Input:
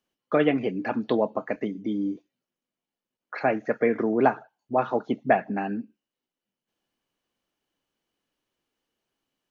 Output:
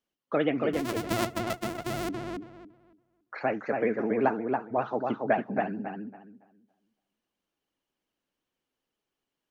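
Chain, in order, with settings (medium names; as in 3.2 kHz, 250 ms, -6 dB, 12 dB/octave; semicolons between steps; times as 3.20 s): 0.73–2.09 s: sorted samples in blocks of 128 samples; filtered feedback delay 280 ms, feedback 24%, low-pass 2.7 kHz, level -3.5 dB; vibrato 15 Hz 92 cents; trim -5 dB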